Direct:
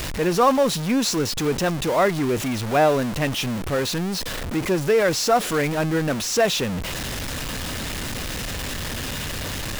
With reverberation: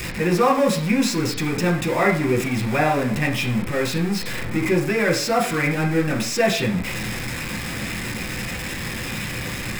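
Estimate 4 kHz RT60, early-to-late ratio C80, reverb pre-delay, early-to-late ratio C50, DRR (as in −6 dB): 0.50 s, 13.0 dB, 3 ms, 8.5 dB, −0.5 dB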